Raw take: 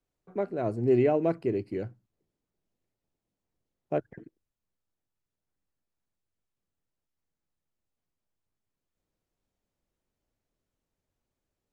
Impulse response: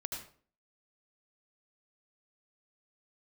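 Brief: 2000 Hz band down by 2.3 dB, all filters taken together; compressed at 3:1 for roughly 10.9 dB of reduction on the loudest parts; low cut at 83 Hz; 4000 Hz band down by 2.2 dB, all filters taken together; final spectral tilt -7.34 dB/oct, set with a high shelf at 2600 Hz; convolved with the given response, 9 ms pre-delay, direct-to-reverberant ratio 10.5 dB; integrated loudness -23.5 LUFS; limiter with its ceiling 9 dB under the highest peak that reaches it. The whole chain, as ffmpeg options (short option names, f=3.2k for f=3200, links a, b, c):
-filter_complex "[0:a]highpass=83,equalizer=f=2k:t=o:g=-3.5,highshelf=f=2.6k:g=4,equalizer=f=4k:t=o:g=-5,acompressor=threshold=-34dB:ratio=3,alimiter=level_in=6.5dB:limit=-24dB:level=0:latency=1,volume=-6.5dB,asplit=2[a][b];[1:a]atrim=start_sample=2205,adelay=9[c];[b][c]afir=irnorm=-1:irlink=0,volume=-10.5dB[d];[a][d]amix=inputs=2:normalize=0,volume=18dB"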